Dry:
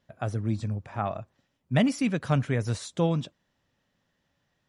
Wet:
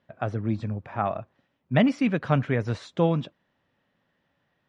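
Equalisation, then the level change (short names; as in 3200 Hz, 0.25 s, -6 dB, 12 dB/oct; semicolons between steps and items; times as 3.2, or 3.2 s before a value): LPF 2900 Hz 12 dB/oct; low shelf 85 Hz -12 dB; +4.0 dB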